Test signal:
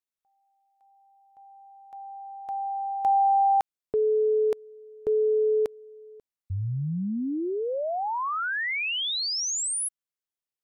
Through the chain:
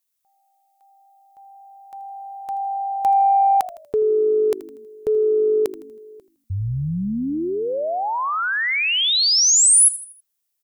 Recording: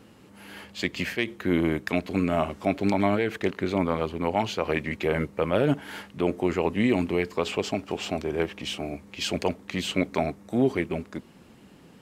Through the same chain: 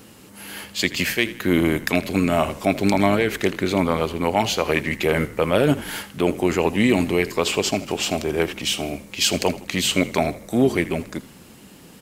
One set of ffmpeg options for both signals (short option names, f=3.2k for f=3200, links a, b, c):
-filter_complex "[0:a]crystalizer=i=2.5:c=0,asplit=5[a][b][c][d][e];[b]adelay=80,afreqshift=-51,volume=-16.5dB[f];[c]adelay=160,afreqshift=-102,volume=-23.8dB[g];[d]adelay=240,afreqshift=-153,volume=-31.2dB[h];[e]adelay=320,afreqshift=-204,volume=-38.5dB[i];[a][f][g][h][i]amix=inputs=5:normalize=0,acontrast=23"